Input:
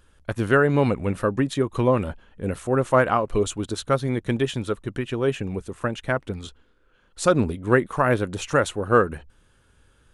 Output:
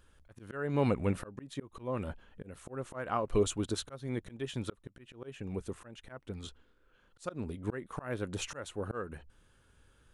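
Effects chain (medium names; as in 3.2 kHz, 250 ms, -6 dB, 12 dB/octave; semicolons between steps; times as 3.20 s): slow attack 435 ms; trim -5.5 dB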